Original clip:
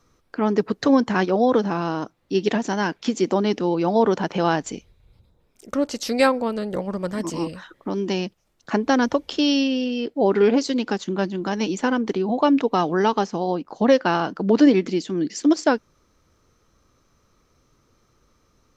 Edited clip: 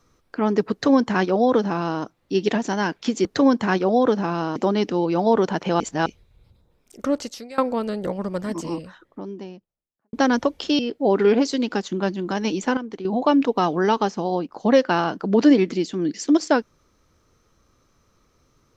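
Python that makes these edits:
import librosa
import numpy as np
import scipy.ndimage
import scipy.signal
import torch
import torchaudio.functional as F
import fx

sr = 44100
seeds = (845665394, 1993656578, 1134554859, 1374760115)

y = fx.studio_fade_out(x, sr, start_s=6.83, length_s=1.99)
y = fx.edit(y, sr, fx.duplicate(start_s=0.72, length_s=1.31, to_s=3.25),
    fx.reverse_span(start_s=4.49, length_s=0.26),
    fx.fade_out_to(start_s=5.88, length_s=0.39, curve='qua', floor_db=-22.5),
    fx.cut(start_s=9.48, length_s=0.47),
    fx.clip_gain(start_s=11.93, length_s=0.28, db=-9.5), tone=tone)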